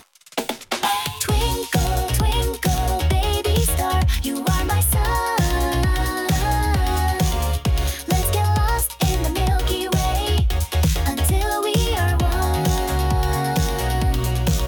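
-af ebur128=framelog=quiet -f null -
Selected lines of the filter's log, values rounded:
Integrated loudness:
  I:         -20.7 LUFS
  Threshold: -30.7 LUFS
Loudness range:
  LRA:         0.7 LU
  Threshold: -40.5 LUFS
  LRA low:   -20.8 LUFS
  LRA high:  -20.1 LUFS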